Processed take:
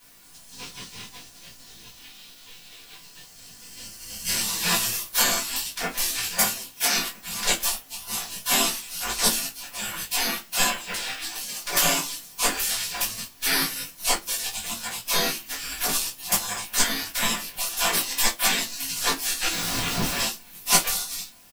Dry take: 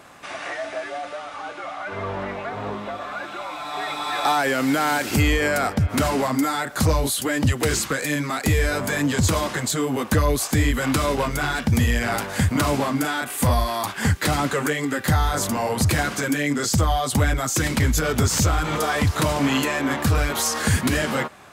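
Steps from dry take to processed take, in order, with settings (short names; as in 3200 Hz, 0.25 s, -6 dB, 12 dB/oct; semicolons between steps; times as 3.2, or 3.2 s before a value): 10.67–11.22 LPF 2000 Hz 6 dB/oct; spectral gate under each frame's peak -30 dB weak; 6.39–6.96 HPF 190 Hz; 19.51–20.19 Schmitt trigger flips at -49.5 dBFS; added noise white -57 dBFS; doubler 18 ms -6 dB; reverb RT60 0.30 s, pre-delay 4 ms, DRR -6 dB; upward expander 1.5:1, over -45 dBFS; gain +7.5 dB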